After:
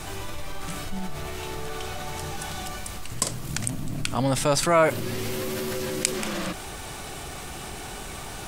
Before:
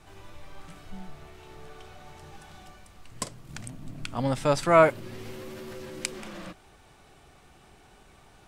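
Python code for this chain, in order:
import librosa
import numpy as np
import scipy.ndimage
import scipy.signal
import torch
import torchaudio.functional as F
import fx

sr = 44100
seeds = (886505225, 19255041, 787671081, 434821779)

y = fx.high_shelf(x, sr, hz=5300.0, db=10.0)
y = fx.env_flatten(y, sr, amount_pct=50)
y = F.gain(torch.from_numpy(y), -2.5).numpy()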